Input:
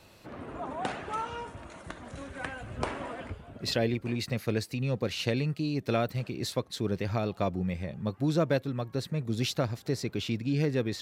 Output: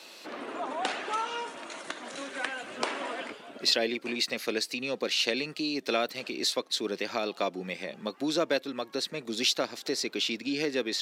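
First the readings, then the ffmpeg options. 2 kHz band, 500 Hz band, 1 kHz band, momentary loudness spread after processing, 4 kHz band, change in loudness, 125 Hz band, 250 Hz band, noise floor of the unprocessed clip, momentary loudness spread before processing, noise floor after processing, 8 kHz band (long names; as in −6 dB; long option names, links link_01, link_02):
+5.5 dB, +0.5 dB, +2.0 dB, 11 LU, +8.5 dB, +1.0 dB, −19.5 dB, −3.0 dB, −55 dBFS, 13 LU, −51 dBFS, +7.0 dB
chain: -filter_complex "[0:a]highpass=frequency=260:width=0.5412,highpass=frequency=260:width=1.3066,equalizer=frequency=4400:width_type=o:width=2.3:gain=9.5,asplit=2[link_01][link_02];[link_02]acompressor=threshold=-37dB:ratio=6,volume=0.5dB[link_03];[link_01][link_03]amix=inputs=2:normalize=0,volume=-2.5dB"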